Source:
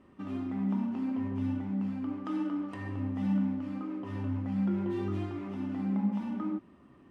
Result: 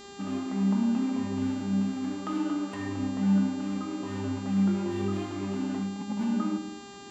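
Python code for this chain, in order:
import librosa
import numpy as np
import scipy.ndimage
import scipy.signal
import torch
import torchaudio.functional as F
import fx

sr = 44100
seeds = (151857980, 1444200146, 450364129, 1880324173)

y = fx.median_filter(x, sr, points=41, at=(1.46, 2.16))
y = fx.lowpass(y, sr, hz=2700.0, slope=12, at=(3.15, 3.59))
y = fx.over_compress(y, sr, threshold_db=-36.0, ratio=-1.0, at=(5.65, 6.23), fade=0.02)
y = fx.dmg_buzz(y, sr, base_hz=400.0, harmonics=19, level_db=-52.0, tilt_db=-3, odd_only=False)
y = fx.room_shoebox(y, sr, seeds[0], volume_m3=3800.0, walls='furnished', distance_m=1.4)
y = y * librosa.db_to_amplitude(3.5)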